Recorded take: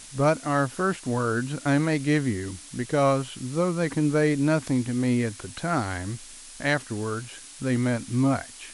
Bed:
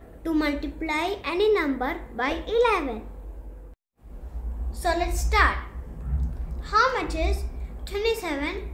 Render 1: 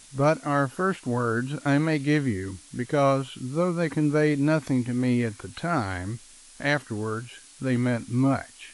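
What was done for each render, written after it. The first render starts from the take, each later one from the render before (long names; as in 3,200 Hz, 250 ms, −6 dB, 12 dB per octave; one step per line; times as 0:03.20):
noise reduction from a noise print 6 dB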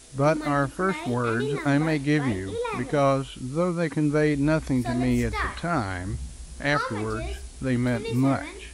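mix in bed −9 dB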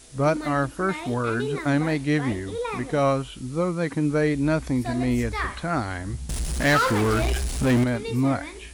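0:06.29–0:07.84: power curve on the samples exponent 0.5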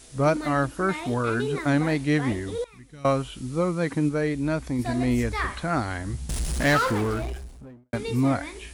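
0:02.64–0:03.05: guitar amp tone stack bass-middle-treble 6-0-2
0:04.09–0:04.79: clip gain −3.5 dB
0:06.48–0:07.93: fade out and dull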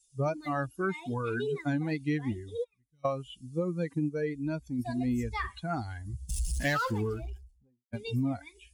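spectral dynamics exaggerated over time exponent 2
downward compressor 6 to 1, threshold −26 dBFS, peak gain reduction 8 dB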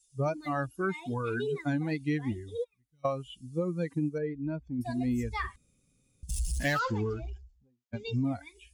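0:04.18–0:04.81: head-to-tape spacing loss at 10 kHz 35 dB
0:05.56–0:06.23: fill with room tone
0:06.79–0:08.24: Butterworth low-pass 7,300 Hz 72 dB per octave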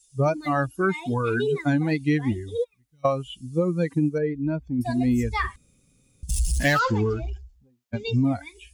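level +8 dB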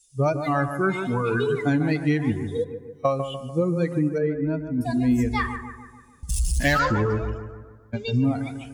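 bucket-brigade delay 147 ms, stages 2,048, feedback 51%, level −9 dB
dense smooth reverb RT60 1.6 s, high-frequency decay 0.55×, DRR 17.5 dB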